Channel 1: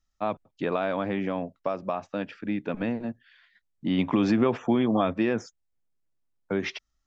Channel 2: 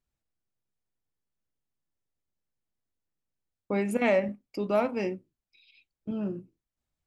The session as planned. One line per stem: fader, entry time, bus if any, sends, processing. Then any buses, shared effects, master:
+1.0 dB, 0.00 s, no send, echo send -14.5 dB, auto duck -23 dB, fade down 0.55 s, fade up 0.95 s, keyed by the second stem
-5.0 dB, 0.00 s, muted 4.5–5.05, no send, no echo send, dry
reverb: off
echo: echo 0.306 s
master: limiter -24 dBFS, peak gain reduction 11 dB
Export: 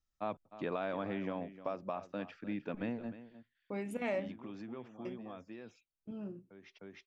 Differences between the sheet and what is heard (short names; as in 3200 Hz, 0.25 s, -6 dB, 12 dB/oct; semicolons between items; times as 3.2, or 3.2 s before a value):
stem 1 +1.0 dB -> -9.5 dB; stem 2 -5.0 dB -> -11.5 dB